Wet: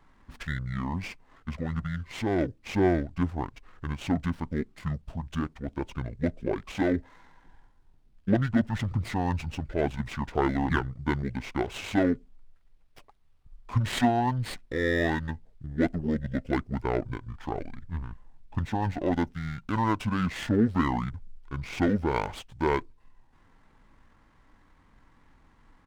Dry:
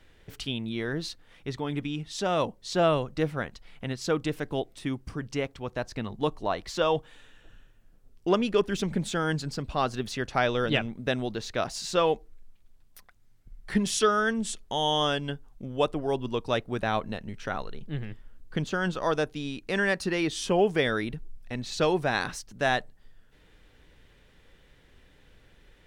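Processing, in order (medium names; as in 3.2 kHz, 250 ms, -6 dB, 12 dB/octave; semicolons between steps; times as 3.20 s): pitch shift -10 st; sliding maximum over 5 samples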